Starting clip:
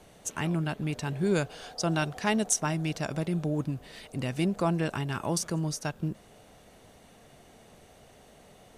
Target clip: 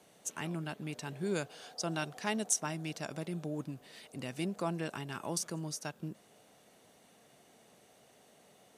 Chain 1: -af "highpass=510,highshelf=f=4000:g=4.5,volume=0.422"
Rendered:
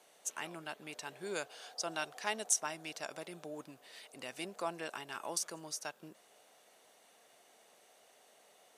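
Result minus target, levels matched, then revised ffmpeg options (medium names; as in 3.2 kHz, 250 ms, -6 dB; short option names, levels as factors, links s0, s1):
125 Hz band -15.0 dB
-af "highpass=160,highshelf=f=4000:g=4.5,volume=0.422"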